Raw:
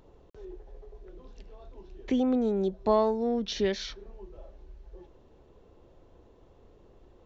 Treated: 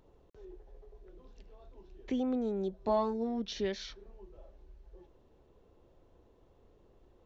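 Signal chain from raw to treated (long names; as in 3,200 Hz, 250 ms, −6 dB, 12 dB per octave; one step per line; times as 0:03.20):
0:02.80–0:03.42: double-tracking delay 22 ms −5 dB
level −6.5 dB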